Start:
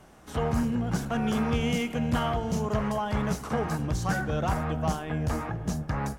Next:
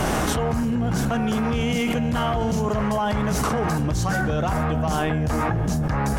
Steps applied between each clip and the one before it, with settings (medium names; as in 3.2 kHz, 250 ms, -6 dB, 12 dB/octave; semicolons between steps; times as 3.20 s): level flattener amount 100%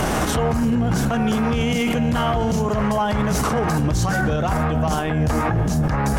peak limiter -18 dBFS, peak gain reduction 8.5 dB; trim +6 dB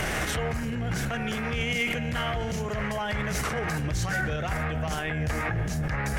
graphic EQ 250/1000/2000 Hz -7/-7/+10 dB; trim -7 dB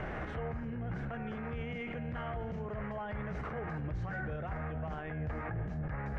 low-pass 1.4 kHz 12 dB/octave; trim -8.5 dB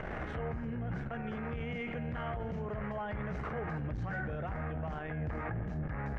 transformer saturation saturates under 130 Hz; trim +2 dB